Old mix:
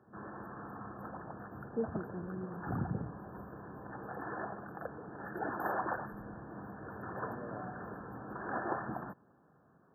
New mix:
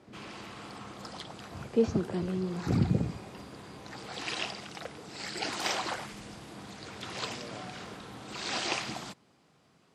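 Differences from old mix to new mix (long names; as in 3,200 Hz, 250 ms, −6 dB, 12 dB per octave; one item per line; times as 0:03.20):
speech +10.0 dB
master: remove linear-phase brick-wall band-stop 1,800–12,000 Hz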